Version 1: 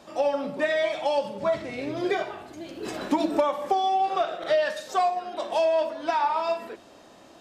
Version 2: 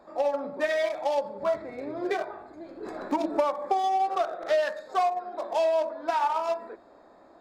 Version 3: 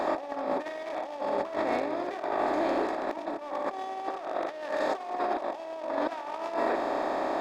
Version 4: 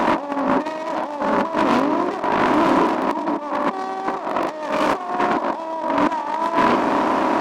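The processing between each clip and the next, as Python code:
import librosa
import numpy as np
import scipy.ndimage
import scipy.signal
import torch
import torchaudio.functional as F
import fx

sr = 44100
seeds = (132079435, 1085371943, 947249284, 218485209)

y1 = fx.wiener(x, sr, points=15)
y1 = fx.peak_eq(y1, sr, hz=130.0, db=-11.0, octaves=2.0)
y2 = fx.bin_compress(y1, sr, power=0.4)
y2 = fx.over_compress(y2, sr, threshold_db=-26.0, ratio=-0.5)
y2 = F.gain(torch.from_numpy(y2), -4.5).numpy()
y3 = fx.self_delay(y2, sr, depth_ms=0.38)
y3 = fx.small_body(y3, sr, hz=(210.0, 990.0), ring_ms=25, db=14)
y3 = F.gain(torch.from_numpy(y3), 7.0).numpy()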